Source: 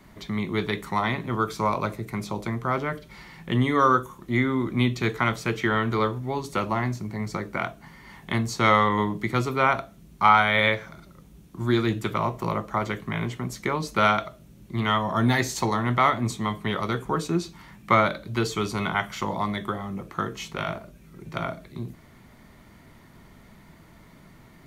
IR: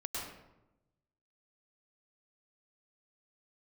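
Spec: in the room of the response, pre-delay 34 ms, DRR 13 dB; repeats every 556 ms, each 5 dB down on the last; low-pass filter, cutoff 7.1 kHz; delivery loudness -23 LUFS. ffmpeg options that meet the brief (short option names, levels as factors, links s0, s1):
-filter_complex "[0:a]lowpass=7100,aecho=1:1:556|1112|1668|2224|2780|3336|3892:0.562|0.315|0.176|0.0988|0.0553|0.031|0.0173,asplit=2[s0][s1];[1:a]atrim=start_sample=2205,adelay=34[s2];[s1][s2]afir=irnorm=-1:irlink=0,volume=0.178[s3];[s0][s3]amix=inputs=2:normalize=0,volume=1.12"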